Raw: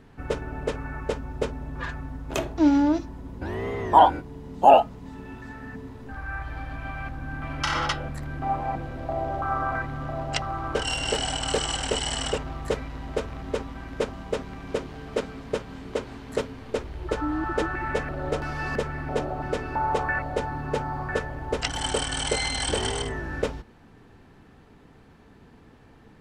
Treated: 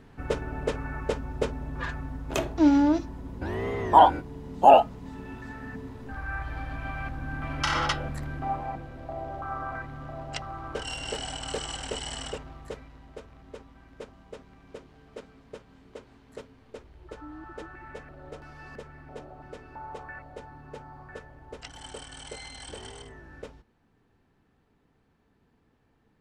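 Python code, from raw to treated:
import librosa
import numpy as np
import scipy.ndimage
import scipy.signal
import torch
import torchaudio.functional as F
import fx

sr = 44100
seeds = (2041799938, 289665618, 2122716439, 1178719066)

y = fx.gain(x, sr, db=fx.line((8.22, -0.5), (8.87, -7.5), (12.18, -7.5), (13.14, -15.5)))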